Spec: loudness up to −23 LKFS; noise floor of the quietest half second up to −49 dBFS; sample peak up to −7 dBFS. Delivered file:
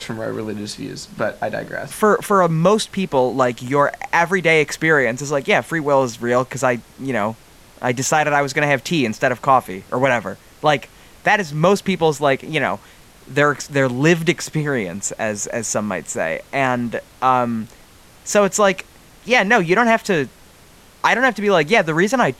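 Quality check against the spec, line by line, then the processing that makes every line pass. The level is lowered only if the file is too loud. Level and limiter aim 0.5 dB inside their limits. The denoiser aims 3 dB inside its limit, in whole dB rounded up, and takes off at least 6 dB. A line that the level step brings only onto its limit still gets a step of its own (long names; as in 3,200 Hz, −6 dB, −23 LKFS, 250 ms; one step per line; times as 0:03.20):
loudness −18.5 LKFS: out of spec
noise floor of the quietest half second −47 dBFS: out of spec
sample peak −2.5 dBFS: out of spec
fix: level −5 dB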